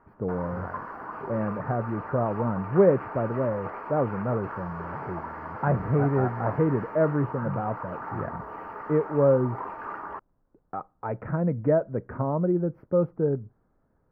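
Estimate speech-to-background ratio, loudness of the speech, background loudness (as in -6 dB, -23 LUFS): 10.5 dB, -27.0 LUFS, -37.5 LUFS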